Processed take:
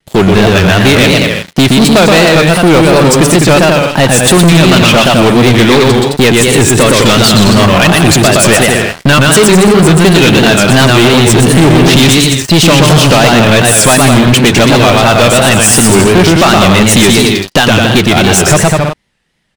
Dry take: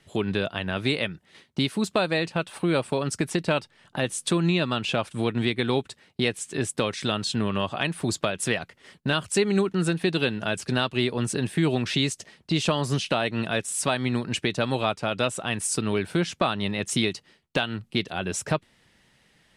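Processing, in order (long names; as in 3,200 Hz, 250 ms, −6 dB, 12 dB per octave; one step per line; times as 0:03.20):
low-shelf EQ 67 Hz +7 dB
on a send: bouncing-ball delay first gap 120 ms, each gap 0.75×, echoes 5
on the sum: pitch vibrato 2.8 Hz 97 cents
leveller curve on the samples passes 5
level +6.5 dB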